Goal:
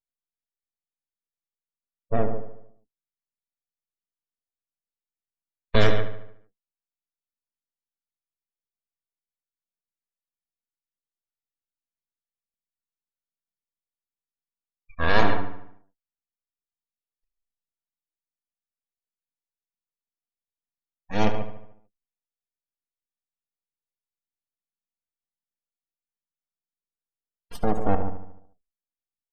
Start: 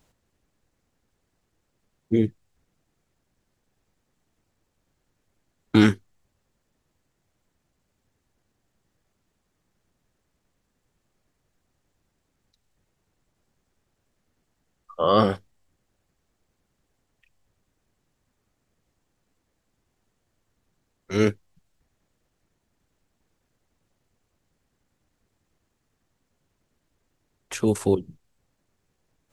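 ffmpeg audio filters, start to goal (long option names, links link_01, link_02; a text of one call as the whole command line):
ffmpeg -i in.wav -filter_complex "[0:a]aeval=exprs='abs(val(0))':channel_layout=same,asplit=2[link_01][link_02];[link_02]aecho=0:1:137:0.355[link_03];[link_01][link_03]amix=inputs=2:normalize=0,afftdn=noise_reduction=35:noise_floor=-38,aecho=1:1:4.3:0.36,asplit=2[link_04][link_05];[link_05]adelay=74,lowpass=frequency=3900:poles=1,volume=-10dB,asplit=2[link_06][link_07];[link_07]adelay=74,lowpass=frequency=3900:poles=1,volume=0.54,asplit=2[link_08][link_09];[link_09]adelay=74,lowpass=frequency=3900:poles=1,volume=0.54,asplit=2[link_10][link_11];[link_11]adelay=74,lowpass=frequency=3900:poles=1,volume=0.54,asplit=2[link_12][link_13];[link_13]adelay=74,lowpass=frequency=3900:poles=1,volume=0.54,asplit=2[link_14][link_15];[link_15]adelay=74,lowpass=frequency=3900:poles=1,volume=0.54[link_16];[link_06][link_08][link_10][link_12][link_14][link_16]amix=inputs=6:normalize=0[link_17];[link_04][link_17]amix=inputs=2:normalize=0" out.wav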